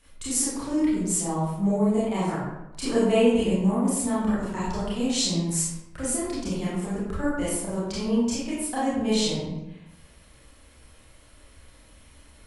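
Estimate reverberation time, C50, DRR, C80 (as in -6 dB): 0.95 s, -1.5 dB, -10.0 dB, 2.0 dB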